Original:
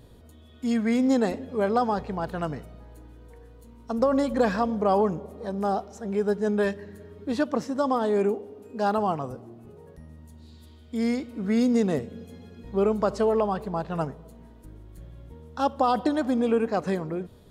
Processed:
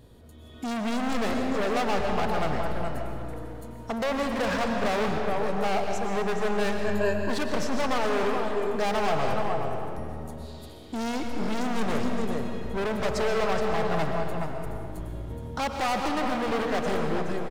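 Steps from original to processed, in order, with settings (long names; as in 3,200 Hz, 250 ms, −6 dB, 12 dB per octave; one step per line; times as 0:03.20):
automatic gain control gain up to 9 dB
in parallel at −4 dB: soft clipping −16 dBFS, distortion −10 dB
on the sum: single-tap delay 421 ms −9.5 dB
gain into a clipping stage and back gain 18.5 dB
0:06.85–0:07.30: EQ curve with evenly spaced ripples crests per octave 1.4, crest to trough 16 dB
on a send at −3.5 dB: convolution reverb RT60 2.6 s, pre-delay 80 ms
on the sum: dynamic equaliser 230 Hz, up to −6 dB, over −31 dBFS, Q 0.81
level −5.5 dB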